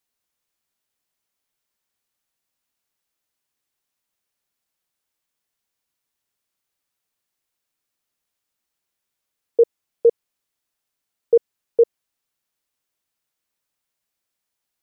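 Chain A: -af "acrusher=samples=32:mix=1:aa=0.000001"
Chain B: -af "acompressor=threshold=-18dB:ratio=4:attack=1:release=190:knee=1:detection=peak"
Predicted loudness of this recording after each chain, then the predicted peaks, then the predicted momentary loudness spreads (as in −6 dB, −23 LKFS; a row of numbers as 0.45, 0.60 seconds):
−20.5, −29.0 LKFS; −7.5, −14.0 dBFS; 3, 3 LU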